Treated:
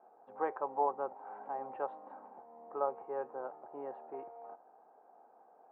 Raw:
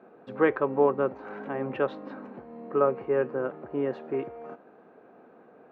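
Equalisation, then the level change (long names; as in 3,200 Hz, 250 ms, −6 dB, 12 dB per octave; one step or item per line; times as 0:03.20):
resonant band-pass 820 Hz, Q 5.3
high-frequency loss of the air 200 metres
+2.5 dB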